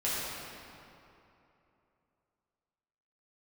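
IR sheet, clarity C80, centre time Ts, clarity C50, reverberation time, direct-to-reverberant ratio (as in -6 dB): -2.0 dB, 0.178 s, -4.0 dB, 2.9 s, -10.0 dB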